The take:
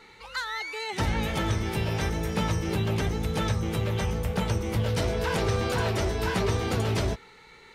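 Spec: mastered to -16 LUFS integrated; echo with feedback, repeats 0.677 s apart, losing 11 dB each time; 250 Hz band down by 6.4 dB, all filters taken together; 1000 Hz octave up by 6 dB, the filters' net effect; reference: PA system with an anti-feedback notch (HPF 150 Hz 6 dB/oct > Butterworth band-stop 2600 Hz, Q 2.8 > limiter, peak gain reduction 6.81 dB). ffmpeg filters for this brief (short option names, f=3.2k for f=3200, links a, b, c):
-af "highpass=f=150:p=1,asuperstop=centerf=2600:order=8:qfactor=2.8,equalizer=f=250:t=o:g=-8,equalizer=f=1k:t=o:g=8,aecho=1:1:677|1354|2031:0.282|0.0789|0.0221,volume=14.5dB,alimiter=limit=-6dB:level=0:latency=1"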